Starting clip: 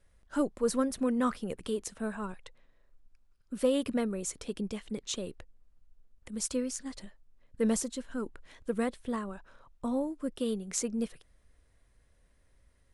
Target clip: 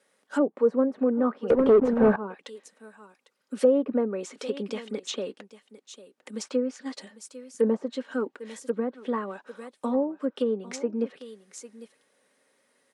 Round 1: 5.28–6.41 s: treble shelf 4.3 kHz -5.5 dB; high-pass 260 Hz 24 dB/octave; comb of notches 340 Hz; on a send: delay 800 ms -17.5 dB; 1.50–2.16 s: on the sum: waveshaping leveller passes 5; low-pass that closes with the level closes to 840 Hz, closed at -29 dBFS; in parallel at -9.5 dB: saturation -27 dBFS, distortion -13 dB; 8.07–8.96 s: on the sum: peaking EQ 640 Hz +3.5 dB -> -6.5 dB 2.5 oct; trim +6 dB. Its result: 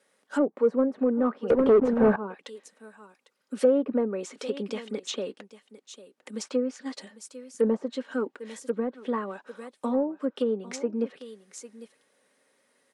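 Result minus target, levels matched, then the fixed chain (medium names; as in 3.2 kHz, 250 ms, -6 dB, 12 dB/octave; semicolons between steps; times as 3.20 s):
saturation: distortion +16 dB
5.28–6.41 s: treble shelf 4.3 kHz -5.5 dB; high-pass 260 Hz 24 dB/octave; comb of notches 340 Hz; on a send: delay 800 ms -17.5 dB; 1.50–2.16 s: on the sum: waveshaping leveller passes 5; low-pass that closes with the level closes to 840 Hz, closed at -29 dBFS; in parallel at -9.5 dB: saturation -16.5 dBFS, distortion -29 dB; 8.07–8.96 s: on the sum: peaking EQ 640 Hz +3.5 dB -> -6.5 dB 2.5 oct; trim +6 dB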